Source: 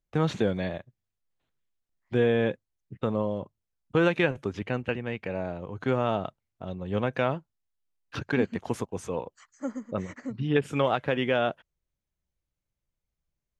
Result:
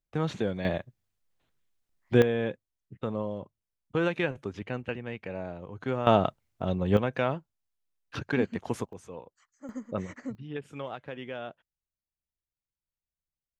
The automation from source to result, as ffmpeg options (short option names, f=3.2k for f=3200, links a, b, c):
-af "asetnsamples=n=441:p=0,asendcmd='0.65 volume volume 4.5dB;2.22 volume volume -4.5dB;6.07 volume volume 7dB;6.97 volume volume -1.5dB;8.93 volume volume -11dB;9.69 volume volume -1.5dB;10.35 volume volume -13dB',volume=-4dB"